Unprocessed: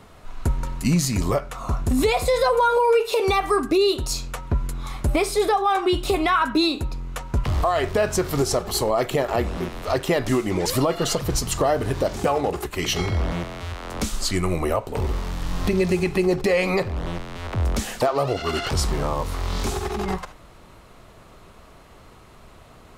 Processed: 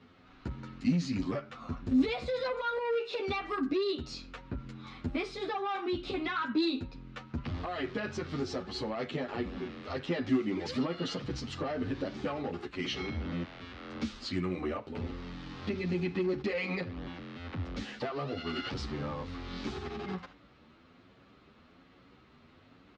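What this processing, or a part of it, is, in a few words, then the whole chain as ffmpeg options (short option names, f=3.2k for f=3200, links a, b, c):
barber-pole flanger into a guitar amplifier: -filter_complex "[0:a]asplit=2[a][b];[b]adelay=9.5,afreqshift=1.2[c];[a][c]amix=inputs=2:normalize=1,asoftclip=type=tanh:threshold=-17.5dB,highpass=90,equalizer=f=120:t=q:w=4:g=-4,equalizer=f=260:t=q:w=4:g=8,equalizer=f=420:t=q:w=4:g=-3,equalizer=f=660:t=q:w=4:g=-8,equalizer=f=980:t=q:w=4:g=-7,lowpass=f=4.6k:w=0.5412,lowpass=f=4.6k:w=1.3066,volume=-6dB"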